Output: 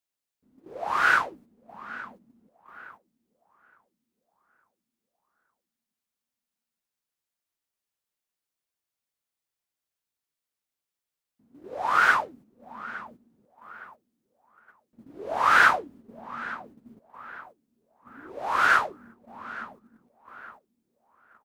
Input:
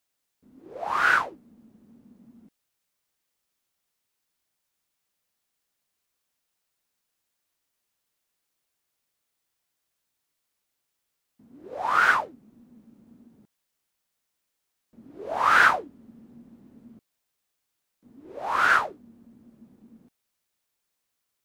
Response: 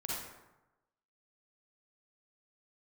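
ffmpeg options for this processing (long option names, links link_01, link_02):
-filter_complex "[0:a]asplit=2[link_01][link_02];[link_02]adelay=864,lowpass=frequency=2200:poles=1,volume=-16dB,asplit=2[link_03][link_04];[link_04]adelay=864,lowpass=frequency=2200:poles=1,volume=0.51,asplit=2[link_05][link_06];[link_06]adelay=864,lowpass=frequency=2200:poles=1,volume=0.51,asplit=2[link_07][link_08];[link_08]adelay=864,lowpass=frequency=2200:poles=1,volume=0.51,asplit=2[link_09][link_10];[link_10]adelay=864,lowpass=frequency=2200:poles=1,volume=0.51[link_11];[link_01][link_03][link_05][link_07][link_09][link_11]amix=inputs=6:normalize=0,agate=range=-9dB:threshold=-49dB:ratio=16:detection=peak"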